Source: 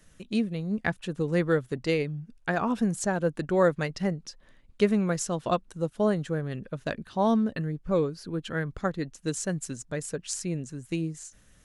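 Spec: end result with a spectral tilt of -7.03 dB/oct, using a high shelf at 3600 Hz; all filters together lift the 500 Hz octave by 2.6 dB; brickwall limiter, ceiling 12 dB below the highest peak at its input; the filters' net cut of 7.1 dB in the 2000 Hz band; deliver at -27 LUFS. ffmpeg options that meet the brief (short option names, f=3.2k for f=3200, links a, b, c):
-af "equalizer=f=500:t=o:g=3.5,equalizer=f=2k:t=o:g=-8.5,highshelf=f=3.6k:g=-5,volume=5dB,alimiter=limit=-16.5dB:level=0:latency=1"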